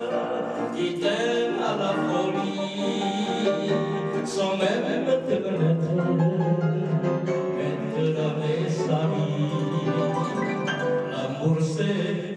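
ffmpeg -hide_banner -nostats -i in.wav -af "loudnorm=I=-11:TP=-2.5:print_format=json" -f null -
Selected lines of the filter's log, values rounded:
"input_i" : "-25.3",
"input_tp" : "-10.2",
"input_lra" : "1.4",
"input_thresh" : "-35.3",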